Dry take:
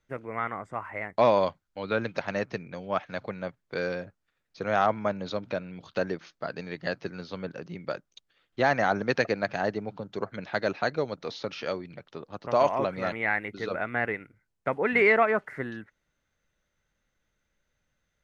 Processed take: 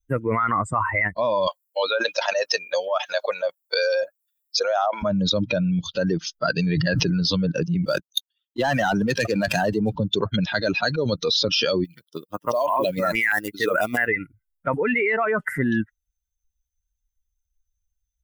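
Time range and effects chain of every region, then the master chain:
1.47–5.03 resonant high-pass 600 Hz, resonance Q 2 + high shelf 3800 Hz +8.5 dB
6.66–7.23 high shelf 4100 Hz -8 dB + sustainer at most 22 dB/s
7.83–9.96 HPF 100 Hz 24 dB/oct + sample leveller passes 2
11.84–14.08 G.711 law mismatch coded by A + low shelf 150 Hz -11.5 dB + stepped notch 6.1 Hz 610–5900 Hz
whole clip: per-bin expansion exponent 2; high shelf 4400 Hz +7.5 dB; fast leveller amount 100%; gain -2.5 dB

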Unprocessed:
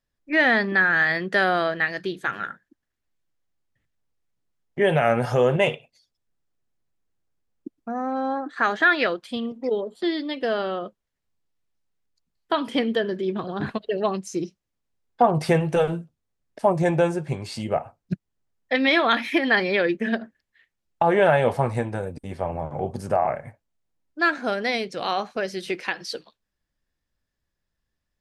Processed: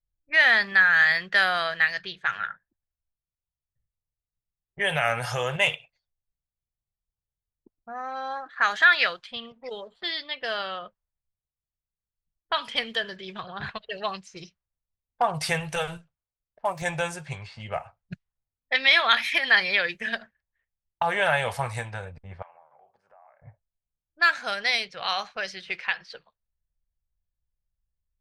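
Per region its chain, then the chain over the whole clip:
15.97–16.82 median filter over 5 samples + low shelf 290 Hz -8 dB
22.42–23.42 HPF 1200 Hz + compressor 4:1, threshold -42 dBFS
whole clip: low-pass opened by the level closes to 430 Hz, open at -20 dBFS; passive tone stack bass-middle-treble 10-0-10; gain +7 dB

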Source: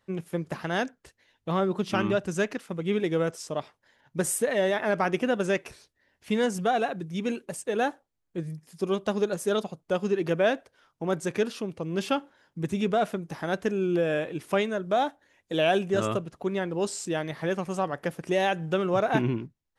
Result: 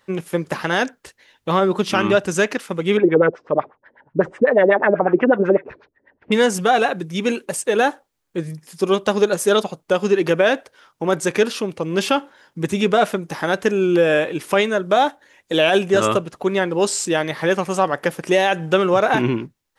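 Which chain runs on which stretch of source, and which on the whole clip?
2.97–6.32 LFO low-pass sine 8.1 Hz 280–2100 Hz + air absorption 120 m
whole clip: low shelf 230 Hz -10.5 dB; notch 680 Hz, Q 12; maximiser +16.5 dB; gain -4 dB

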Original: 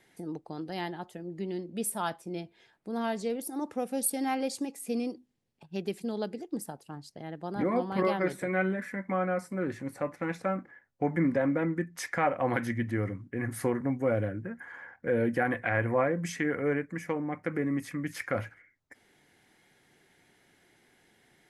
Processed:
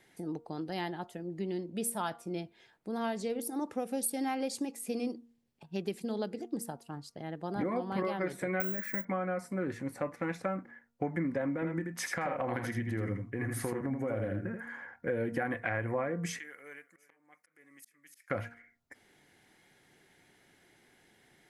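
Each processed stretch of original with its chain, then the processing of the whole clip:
8.6–9.05 high shelf 2900 Hz +5.5 dB + careless resampling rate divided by 2×, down none, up zero stuff
11.54–14.77 compressor 3:1, threshold -29 dBFS + echo 81 ms -5 dB
16.39–18.3 differentiator + auto swell 0.42 s + echo 0.348 s -22 dB
whole clip: de-hum 234.2 Hz, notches 6; compressor, threshold -29 dBFS

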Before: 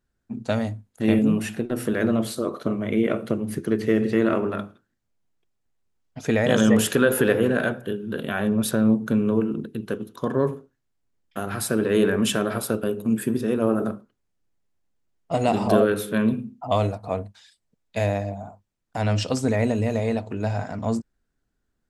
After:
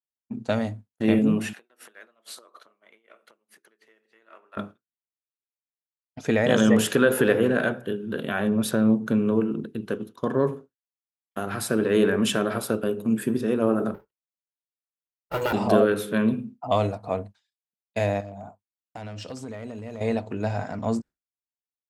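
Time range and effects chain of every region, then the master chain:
1.53–4.57 compressor 10:1, threshold -30 dBFS + HPF 900 Hz
13.94–15.53 minimum comb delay 2.1 ms + careless resampling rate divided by 3×, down filtered, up hold
18.2–20.01 compressor 8:1, threshold -31 dBFS + hard clip -28 dBFS
whole clip: HPF 110 Hz 6 dB/oct; expander -36 dBFS; high shelf 7800 Hz -5.5 dB

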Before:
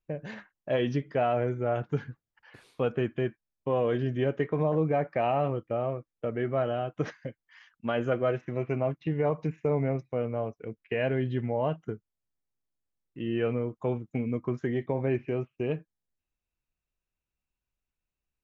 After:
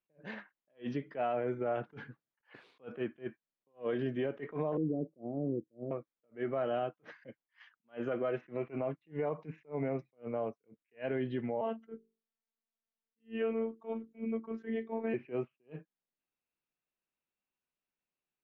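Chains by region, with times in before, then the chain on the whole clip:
4.77–5.91 inverse Chebyshev low-pass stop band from 1800 Hz, stop band 70 dB + dynamic EQ 290 Hz, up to +5 dB, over -42 dBFS, Q 1.9
11.61–15.14 notches 50/100/150/200/250/300/350/400 Hz + robotiser 225 Hz
whole clip: three-band isolator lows -22 dB, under 160 Hz, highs -24 dB, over 4300 Hz; limiter -24.5 dBFS; attack slew limiter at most 300 dB/s; gain -1 dB

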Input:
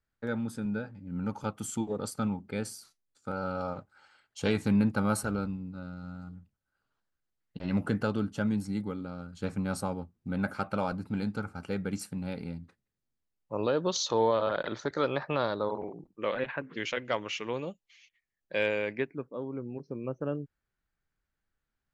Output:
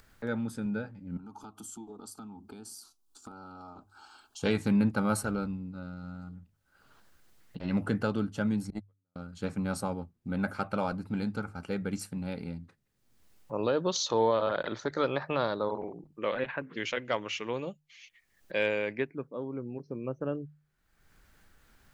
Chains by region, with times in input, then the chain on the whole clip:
1.17–4.43 compressor 3:1, threshold -42 dBFS + fixed phaser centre 530 Hz, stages 6
8.7–9.16 gate -29 dBFS, range -50 dB + transient shaper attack +8 dB, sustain -4 dB
whole clip: notches 50/100/150 Hz; upward compressor, threshold -41 dBFS

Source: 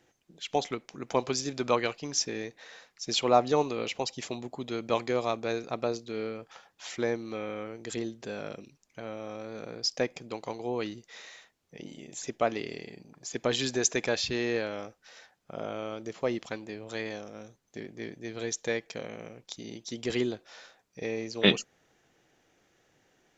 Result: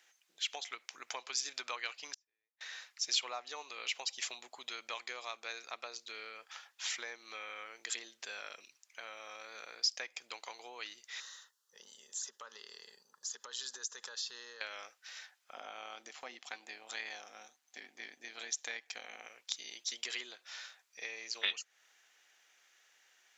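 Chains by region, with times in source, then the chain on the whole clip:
2.14–2.61 high shelf 2200 Hz -12 dB + compressor 2:1, threshold -39 dBFS + flipped gate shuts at -45 dBFS, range -40 dB
11.2–14.61 fixed phaser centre 460 Hz, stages 8 + compressor 5:1, threshold -40 dBFS
15.53–19.27 small resonant body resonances 250/750 Hz, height 12 dB, ringing for 50 ms + AM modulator 150 Hz, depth 30%
whole clip: compressor 3:1, threshold -35 dBFS; HPF 1500 Hz 12 dB/oct; gain +4.5 dB

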